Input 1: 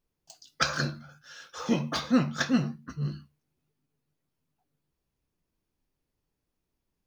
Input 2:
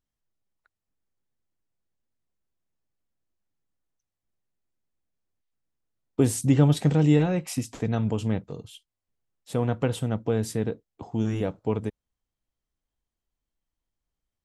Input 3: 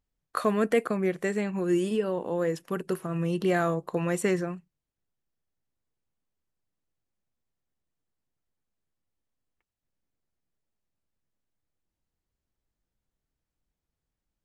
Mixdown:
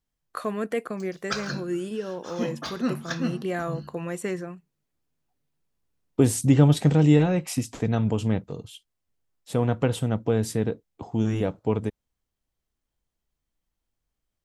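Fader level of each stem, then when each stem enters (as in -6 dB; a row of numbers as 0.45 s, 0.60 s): -3.5 dB, +2.0 dB, -4.0 dB; 0.70 s, 0.00 s, 0.00 s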